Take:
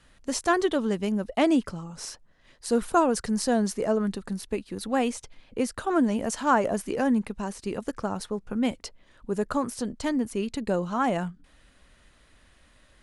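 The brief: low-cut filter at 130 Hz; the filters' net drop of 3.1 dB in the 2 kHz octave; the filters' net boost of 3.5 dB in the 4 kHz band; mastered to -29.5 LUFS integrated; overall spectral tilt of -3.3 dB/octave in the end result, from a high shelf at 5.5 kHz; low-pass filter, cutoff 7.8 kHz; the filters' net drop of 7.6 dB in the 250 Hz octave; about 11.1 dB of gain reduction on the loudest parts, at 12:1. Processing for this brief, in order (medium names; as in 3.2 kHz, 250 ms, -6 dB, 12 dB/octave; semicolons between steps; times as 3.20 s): high-pass 130 Hz; low-pass 7.8 kHz; peaking EQ 250 Hz -9 dB; peaking EQ 2 kHz -5.5 dB; peaking EQ 4 kHz +5 dB; treble shelf 5.5 kHz +4 dB; compression 12:1, threshold -29 dBFS; trim +6 dB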